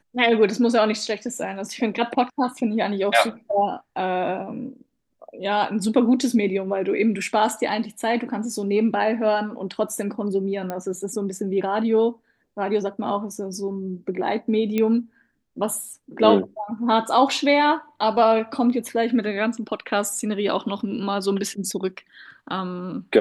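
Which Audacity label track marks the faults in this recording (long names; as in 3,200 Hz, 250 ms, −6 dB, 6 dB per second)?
10.700000	10.700000	click −15 dBFS
14.780000	14.780000	click −11 dBFS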